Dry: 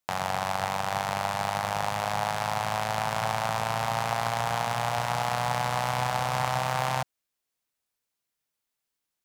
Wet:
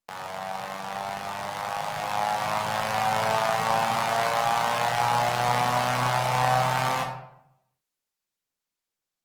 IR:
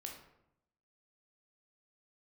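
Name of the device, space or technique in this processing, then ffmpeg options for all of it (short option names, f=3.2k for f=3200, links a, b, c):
far-field microphone of a smart speaker: -filter_complex "[1:a]atrim=start_sample=2205[a];[0:a][a]afir=irnorm=-1:irlink=0,highpass=140,dynaudnorm=f=340:g=13:m=9dB,volume=-1.5dB" -ar 48000 -c:a libopus -b:a 20k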